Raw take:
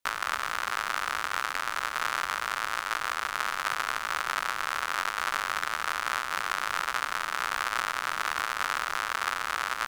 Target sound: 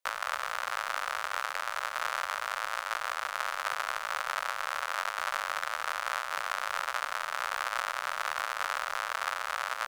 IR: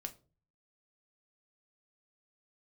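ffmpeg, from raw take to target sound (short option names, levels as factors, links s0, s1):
-af "lowshelf=f=430:t=q:w=3:g=-8.5,volume=0.631"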